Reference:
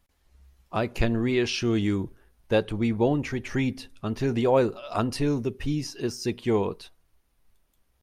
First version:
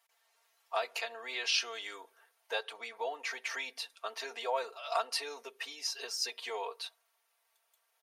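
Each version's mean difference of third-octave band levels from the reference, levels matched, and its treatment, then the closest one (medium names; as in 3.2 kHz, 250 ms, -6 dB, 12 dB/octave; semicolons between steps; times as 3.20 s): 14.0 dB: compression 2.5:1, threshold -29 dBFS, peak gain reduction 9 dB; comb 4.4 ms, depth 84%; dynamic bell 4.2 kHz, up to +5 dB, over -51 dBFS, Q 2.3; inverse Chebyshev high-pass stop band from 180 Hz, stop band 60 dB; trim -1 dB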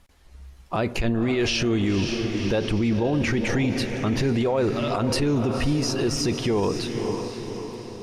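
7.5 dB: in parallel at -3 dB: compressor with a negative ratio -29 dBFS; on the sum: Bessel low-pass 10 kHz, order 2; echo that smears into a reverb 522 ms, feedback 52%, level -10 dB; peak limiter -20 dBFS, peak gain reduction 12.5 dB; trim +5 dB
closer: second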